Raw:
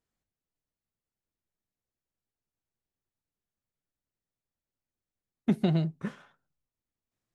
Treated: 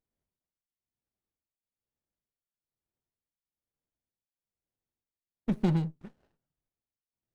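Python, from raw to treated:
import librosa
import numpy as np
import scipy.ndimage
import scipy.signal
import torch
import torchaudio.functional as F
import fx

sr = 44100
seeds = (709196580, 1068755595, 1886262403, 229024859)

y = fx.tremolo_shape(x, sr, shape='triangle', hz=1.1, depth_pct=90)
y = fx.running_max(y, sr, window=33)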